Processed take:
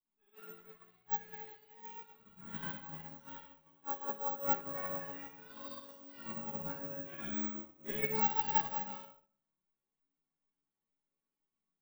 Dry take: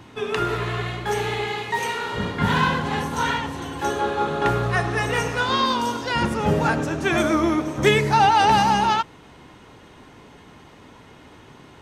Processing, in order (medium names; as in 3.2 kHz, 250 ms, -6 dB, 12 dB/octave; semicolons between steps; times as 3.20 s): peaking EQ 150 Hz +7.5 dB 0.22 oct; chord resonator F#3 minor, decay 0.34 s; chorus voices 4, 0.46 Hz, delay 22 ms, depth 3.7 ms; 4.64–6.69 s: flutter echo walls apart 10.5 m, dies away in 0.45 s; simulated room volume 310 m³, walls mixed, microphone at 3.7 m; careless resampling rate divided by 2×, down none, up zero stuff; upward expansion 2.5:1, over -42 dBFS; trim -6 dB